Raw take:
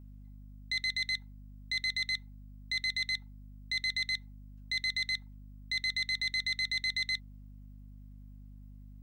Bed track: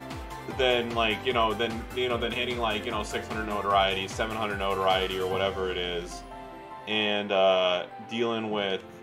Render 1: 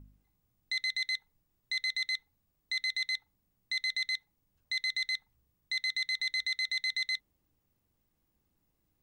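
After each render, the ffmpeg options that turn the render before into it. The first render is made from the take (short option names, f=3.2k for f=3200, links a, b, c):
-af "bandreject=f=50:t=h:w=4,bandreject=f=100:t=h:w=4,bandreject=f=150:t=h:w=4,bandreject=f=200:t=h:w=4,bandreject=f=250:t=h:w=4,bandreject=f=300:t=h:w=4,bandreject=f=350:t=h:w=4,bandreject=f=400:t=h:w=4,bandreject=f=450:t=h:w=4,bandreject=f=500:t=h:w=4,bandreject=f=550:t=h:w=4,bandreject=f=600:t=h:w=4"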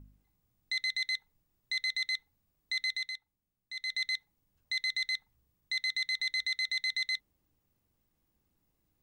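-filter_complex "[0:a]asplit=3[a][b][c];[a]atrim=end=3.19,asetpts=PTS-STARTPTS,afade=t=out:st=2.89:d=0.3:silence=0.316228[d];[b]atrim=start=3.19:end=3.71,asetpts=PTS-STARTPTS,volume=-10dB[e];[c]atrim=start=3.71,asetpts=PTS-STARTPTS,afade=t=in:d=0.3:silence=0.316228[f];[d][e][f]concat=n=3:v=0:a=1"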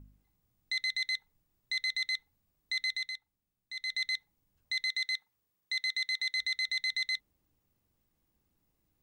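-filter_complex "[0:a]asettb=1/sr,asplit=3[a][b][c];[a]atrim=end=4.854[d];[b]atrim=start=4.85:end=6.37,asetpts=PTS-STARTPTS,afade=t=in:d=0.004:c=qsin,afade=t=out:st=1.516:d=0.004:c=qsin,highpass=f=540:p=1[e];[c]atrim=start=6.366[f];[d][e]acrossfade=d=0.004:c1=hsin:c2=qsin[g];[g][f]acrossfade=d=0.004:c1=qsin:c2=hsin"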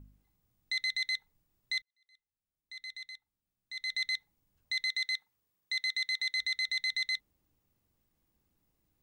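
-filter_complex "[0:a]asplit=2[a][b];[a]atrim=end=1.82,asetpts=PTS-STARTPTS,afade=t=out:st=1.816:d=0.004:c=hsin[c];[b]atrim=start=1.82,asetpts=PTS-STARTPTS,afade=t=in:d=2:c=qua[d];[c][d]concat=n=2:v=0:a=1"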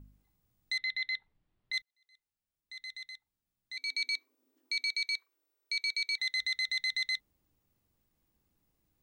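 -filter_complex "[0:a]asplit=3[a][b][c];[a]afade=t=out:st=0.77:d=0.02[d];[b]lowpass=f=3.8k:w=0.5412,lowpass=f=3.8k:w=1.3066,afade=t=in:st=0.77:d=0.02,afade=t=out:st=1.72:d=0.02[e];[c]afade=t=in:st=1.72:d=0.02[f];[d][e][f]amix=inputs=3:normalize=0,asettb=1/sr,asplit=3[g][h][i];[g]atrim=end=3.774[j];[h]atrim=start=3.77:end=6.18,asetpts=PTS-STARTPTS,afade=t=in:d=0.004:c=qsin,afade=t=out:st=2.406:d=0.004:c=qsin,afreqshift=240[k];[i]atrim=start=6.176[l];[j][k]acrossfade=d=0.004:c1=hsin:c2=qsin[m];[m][l]acrossfade=d=0.004:c1=qsin:c2=hsin"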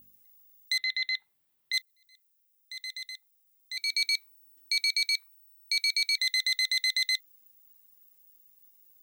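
-af "highpass=64,aemphasis=mode=production:type=riaa"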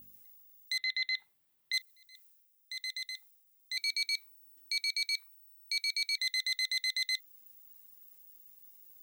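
-af "alimiter=limit=-23.5dB:level=0:latency=1:release=292,areverse,acompressor=mode=upward:threshold=-50dB:ratio=2.5,areverse"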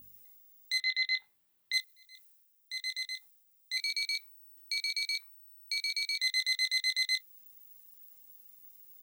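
-filter_complex "[0:a]asplit=2[a][b];[b]adelay=22,volume=-6dB[c];[a][c]amix=inputs=2:normalize=0"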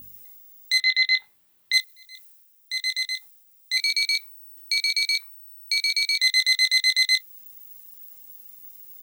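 -af "volume=10.5dB"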